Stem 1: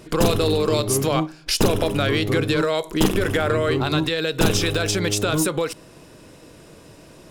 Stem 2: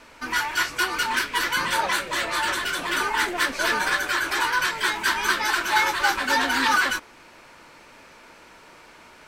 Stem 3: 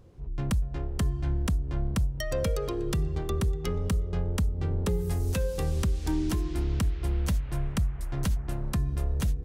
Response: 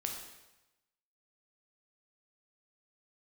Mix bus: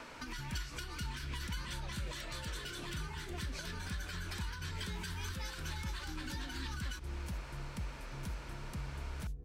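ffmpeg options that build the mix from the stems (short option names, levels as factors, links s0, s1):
-filter_complex "[1:a]equalizer=f=1400:t=o:w=0.77:g=2.5,acompressor=threshold=0.0447:ratio=6,volume=1[s0];[2:a]volume=0.178[s1];[s0]highshelf=f=7900:g=-7.5,acompressor=threshold=0.0178:ratio=6,volume=1[s2];[s1][s2]amix=inputs=2:normalize=0,equalizer=f=600:w=0.39:g=6,acrossover=split=240|3000[s3][s4][s5];[s4]acompressor=threshold=0.00282:ratio=6[s6];[s3][s6][s5]amix=inputs=3:normalize=0"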